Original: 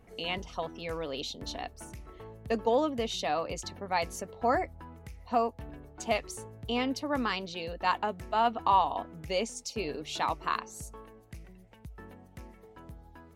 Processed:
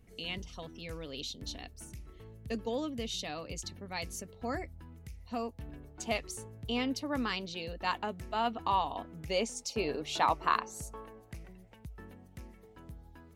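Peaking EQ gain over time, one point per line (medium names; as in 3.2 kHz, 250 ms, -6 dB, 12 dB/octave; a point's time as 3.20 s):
peaking EQ 850 Hz 2.2 oct
5.33 s -13.5 dB
5.76 s -6 dB
9.07 s -6 dB
9.68 s +3 dB
11.41 s +3 dB
12.13 s -6 dB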